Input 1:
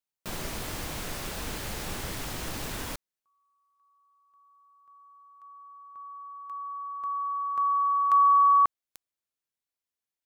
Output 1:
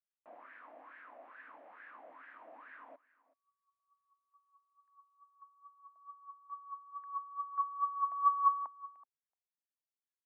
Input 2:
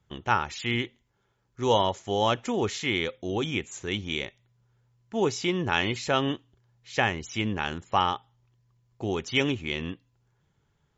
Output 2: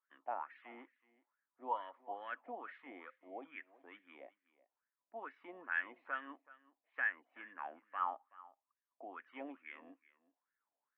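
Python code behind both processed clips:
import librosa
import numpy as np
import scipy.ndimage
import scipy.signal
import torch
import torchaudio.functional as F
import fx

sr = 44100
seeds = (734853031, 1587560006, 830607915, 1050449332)

y = fx.cabinet(x, sr, low_hz=270.0, low_slope=24, high_hz=2300.0, hz=(270.0, 400.0, 830.0, 1400.0), db=(9, -10, -7, -5))
y = fx.wah_lfo(y, sr, hz=2.3, low_hz=670.0, high_hz=1700.0, q=7.4)
y = y + 10.0 ** (-20.0 / 20.0) * np.pad(y, (int(376 * sr / 1000.0), 0))[:len(y)]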